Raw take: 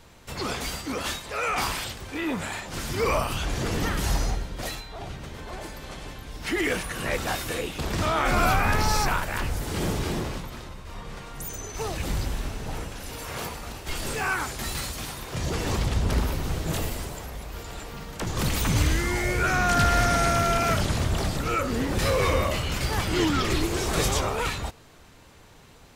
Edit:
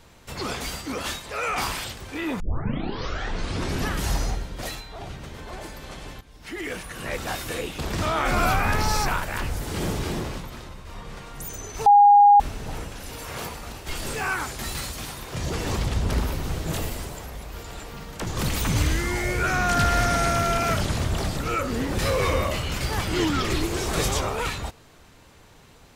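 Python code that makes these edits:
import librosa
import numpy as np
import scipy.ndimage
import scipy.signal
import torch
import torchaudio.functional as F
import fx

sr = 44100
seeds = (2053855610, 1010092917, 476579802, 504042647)

y = fx.edit(x, sr, fx.tape_start(start_s=2.4, length_s=1.58),
    fx.fade_in_from(start_s=6.21, length_s=1.4, floor_db=-13.0),
    fx.bleep(start_s=11.86, length_s=0.54, hz=817.0, db=-9.5), tone=tone)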